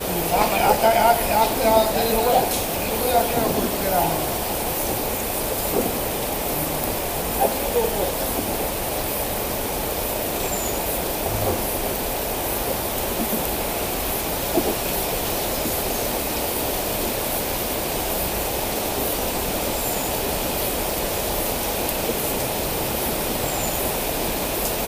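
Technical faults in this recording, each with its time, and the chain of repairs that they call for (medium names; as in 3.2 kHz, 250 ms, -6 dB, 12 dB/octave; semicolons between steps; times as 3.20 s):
20.91 s: pop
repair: de-click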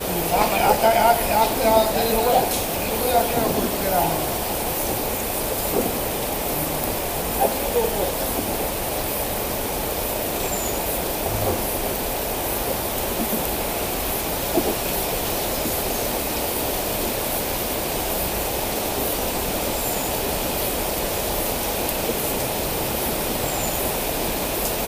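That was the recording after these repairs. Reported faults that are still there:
nothing left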